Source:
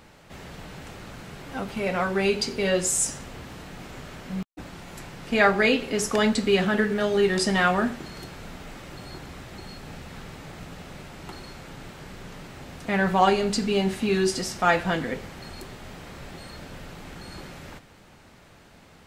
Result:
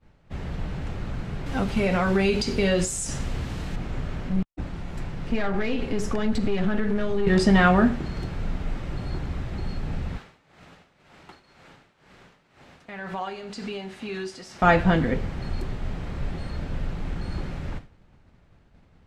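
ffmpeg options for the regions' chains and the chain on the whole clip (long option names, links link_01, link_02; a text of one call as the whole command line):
ffmpeg -i in.wav -filter_complex "[0:a]asettb=1/sr,asplit=3[link_01][link_02][link_03];[link_01]atrim=end=1.464[link_04];[link_02]atrim=start=1.46:end=3.76,asetpts=PTS-STARTPTS,afade=type=in:duration=0.004:curve=qsin,afade=type=out:start_time=2.296:duration=0.004:curve=qsin,highshelf=frequency=3300:gain=10.5,acompressor=threshold=-22dB:ratio=3:attack=3.2:release=140:knee=1:detection=peak[link_05];[link_03]atrim=start=3.756[link_06];[link_04][link_05]acrossfade=duration=0.004:curve1=hsin:curve2=qsin[link_07];[link_07][link_06]acrossfade=duration=0.004:curve1=qsin:curve2=hsin,asettb=1/sr,asplit=3[link_08][link_09][link_10];[link_08]atrim=end=4.294[link_11];[link_09]atrim=start=4.29:end=7.27,asetpts=PTS-STARTPTS,afade=type=in:duration=0.004:curve=qsin,afade=type=out:start_time=2.976:duration=0.004:curve=qsin,acompressor=threshold=-24dB:ratio=5:attack=3.2:release=140:knee=1:detection=peak,aeval=exprs='(tanh(17.8*val(0)+0.4)-tanh(0.4))/17.8':channel_layout=same[link_12];[link_10]atrim=start=7.266[link_13];[link_11][link_12]acrossfade=duration=0.004:curve1=hsin:curve2=qsin[link_14];[link_14][link_13]acrossfade=duration=0.004:curve1=qsin:curve2=hsin,asettb=1/sr,asplit=3[link_15][link_16][link_17];[link_15]atrim=end=10.174[link_18];[link_16]atrim=start=10.17:end=14.62,asetpts=PTS-STARTPTS,afade=type=in:duration=0.004:curve=qsin,afade=type=out:start_time=4.446:duration=0.004:curve=qsin,highpass=frequency=880:poles=1,acompressor=threshold=-34dB:ratio=2.5:attack=3.2:release=140:knee=1:detection=peak,tremolo=f=2:d=0.45[link_19];[link_17]atrim=start=14.616[link_20];[link_18][link_19]acrossfade=duration=0.004:curve1=hsin:curve2=qsin[link_21];[link_21][link_20]acrossfade=duration=0.004:curve1=qsin:curve2=hsin,agate=range=-33dB:threshold=-42dB:ratio=3:detection=peak,aemphasis=mode=reproduction:type=bsi,volume=2dB" out.wav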